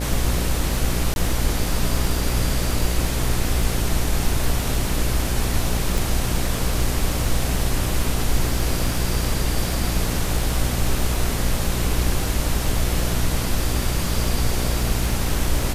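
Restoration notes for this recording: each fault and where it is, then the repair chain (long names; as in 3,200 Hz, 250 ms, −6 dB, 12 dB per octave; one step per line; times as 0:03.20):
mains buzz 60 Hz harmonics 13 −25 dBFS
surface crackle 27 per second −26 dBFS
0:01.14–0:01.16: drop-out 21 ms
0:05.98: click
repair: click removal
hum removal 60 Hz, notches 13
repair the gap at 0:01.14, 21 ms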